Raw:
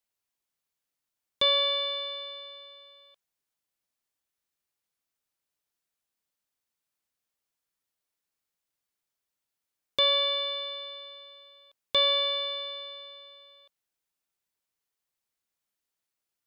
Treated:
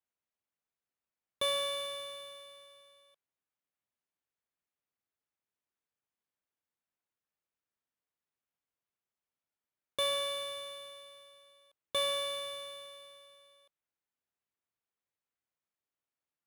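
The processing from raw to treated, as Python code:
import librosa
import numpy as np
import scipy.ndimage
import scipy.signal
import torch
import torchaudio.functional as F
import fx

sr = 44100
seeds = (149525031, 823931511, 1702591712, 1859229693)

y = scipy.signal.medfilt(x, 9)
y = scipy.signal.sosfilt(scipy.signal.butter(2, 45.0, 'highpass', fs=sr, output='sos'), y)
y = y * 10.0 ** (-5.0 / 20.0)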